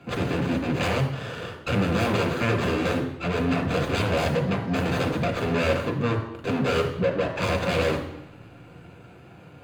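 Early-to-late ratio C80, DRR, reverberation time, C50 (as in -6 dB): 10.5 dB, 3.0 dB, 0.85 s, 8.5 dB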